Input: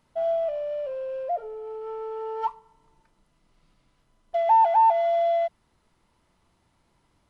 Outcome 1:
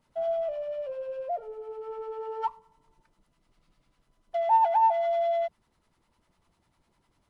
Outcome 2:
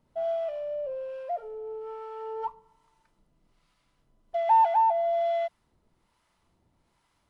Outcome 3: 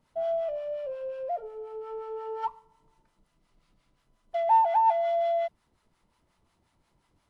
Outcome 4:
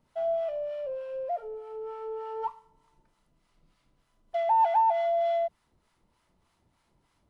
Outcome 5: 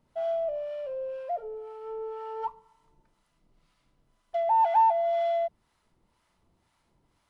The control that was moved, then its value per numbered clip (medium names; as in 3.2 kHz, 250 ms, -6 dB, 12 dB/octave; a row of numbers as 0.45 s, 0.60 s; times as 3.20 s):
harmonic tremolo, rate: 10 Hz, 1.2 Hz, 5.6 Hz, 3.3 Hz, 2 Hz